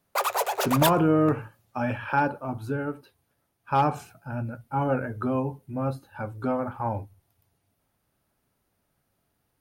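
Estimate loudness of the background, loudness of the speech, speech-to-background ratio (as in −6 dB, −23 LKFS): −27.0 LKFS, −27.5 LKFS, −0.5 dB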